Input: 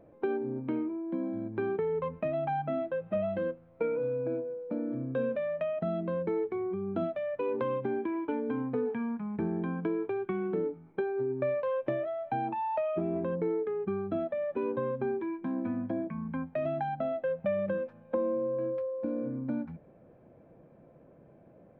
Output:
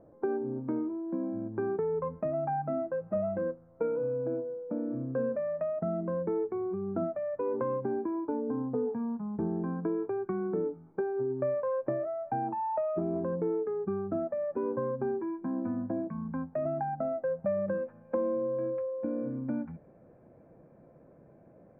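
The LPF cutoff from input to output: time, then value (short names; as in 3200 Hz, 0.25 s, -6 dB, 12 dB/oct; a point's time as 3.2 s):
LPF 24 dB/oct
7.72 s 1500 Hz
8.41 s 1100 Hz
9.17 s 1100 Hz
10.02 s 1500 Hz
17.56 s 1500 Hz
18.14 s 2200 Hz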